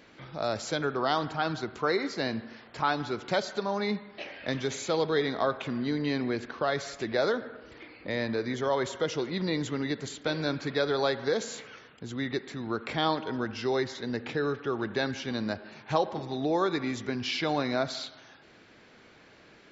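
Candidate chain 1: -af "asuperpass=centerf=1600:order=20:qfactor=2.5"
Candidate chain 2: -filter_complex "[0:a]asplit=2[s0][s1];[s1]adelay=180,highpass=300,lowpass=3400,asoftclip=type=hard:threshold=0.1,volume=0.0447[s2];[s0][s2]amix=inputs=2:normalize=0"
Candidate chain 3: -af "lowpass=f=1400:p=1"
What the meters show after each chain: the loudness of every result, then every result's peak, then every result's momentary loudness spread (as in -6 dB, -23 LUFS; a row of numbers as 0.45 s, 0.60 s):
-41.0 LUFS, -30.5 LUFS, -32.0 LUFS; -22.0 dBFS, -12.0 dBFS, -13.0 dBFS; 14 LU, 8 LU, 8 LU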